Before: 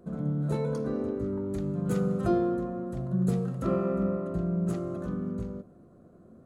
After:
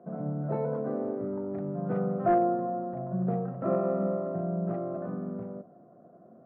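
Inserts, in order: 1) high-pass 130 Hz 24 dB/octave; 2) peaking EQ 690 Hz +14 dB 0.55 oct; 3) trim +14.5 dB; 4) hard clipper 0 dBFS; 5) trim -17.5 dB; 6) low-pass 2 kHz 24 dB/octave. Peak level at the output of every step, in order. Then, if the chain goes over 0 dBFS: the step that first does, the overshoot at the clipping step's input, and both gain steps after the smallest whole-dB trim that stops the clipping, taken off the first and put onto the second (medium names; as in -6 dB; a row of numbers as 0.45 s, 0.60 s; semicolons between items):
-15.0 dBFS, -10.0 dBFS, +4.5 dBFS, 0.0 dBFS, -17.5 dBFS, -17.0 dBFS; step 3, 4.5 dB; step 3 +9.5 dB, step 5 -12.5 dB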